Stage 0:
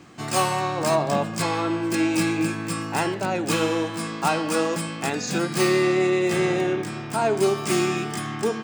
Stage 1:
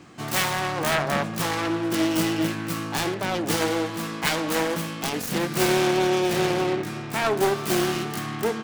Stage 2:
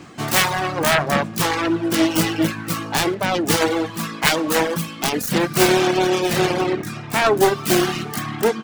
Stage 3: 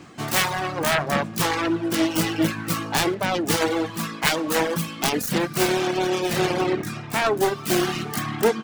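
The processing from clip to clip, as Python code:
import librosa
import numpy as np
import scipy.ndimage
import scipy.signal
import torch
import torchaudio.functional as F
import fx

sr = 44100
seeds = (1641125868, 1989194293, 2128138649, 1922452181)

y1 = fx.self_delay(x, sr, depth_ms=0.47)
y2 = fx.dereverb_blind(y1, sr, rt60_s=1.1)
y2 = F.gain(torch.from_numpy(y2), 7.5).numpy()
y3 = fx.rider(y2, sr, range_db=3, speed_s=0.5)
y3 = F.gain(torch.from_numpy(y3), -3.5).numpy()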